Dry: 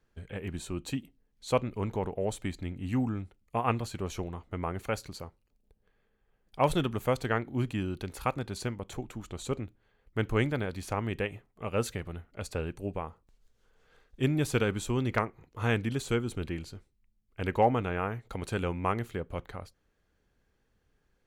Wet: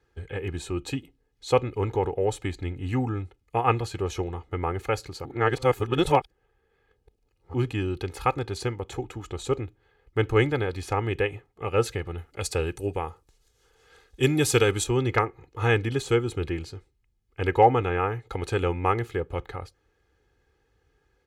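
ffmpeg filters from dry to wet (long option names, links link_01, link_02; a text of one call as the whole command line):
ffmpeg -i in.wav -filter_complex "[0:a]asettb=1/sr,asplit=3[link_01][link_02][link_03];[link_01]atrim=end=12.184[link_04];[link_02]atrim=start=12.18:end=14.84,asetpts=PTS-STARTPTS,afade=type=in:duration=0.004:curve=qsin,afade=type=out:start_time=2.656:duration=0.004:curve=qsin,equalizer=frequency=11000:width=0.31:gain=12[link_05];[link_03]atrim=start=14.836[link_06];[link_04][link_05]acrossfade=duration=0.004:curve1=hsin:curve2=qsin[link_07];[link_07][link_06]acrossfade=duration=0.004:curve1=qsin:curve2=hsin,asplit=3[link_08][link_09][link_10];[link_08]atrim=end=5.252[link_11];[link_09]atrim=start=5.248:end=7.542,asetpts=PTS-STARTPTS,areverse[link_12];[link_10]atrim=start=7.538[link_13];[link_11][link_12]acrossfade=duration=0.004:curve1=hsin:curve2=hsin[link_14];[link_14][link_13]acrossfade=duration=0.004:curve1=hsin:curve2=hsin,highpass=46,highshelf=frequency=10000:gain=-11,aecho=1:1:2.4:0.66,volume=4.5dB" out.wav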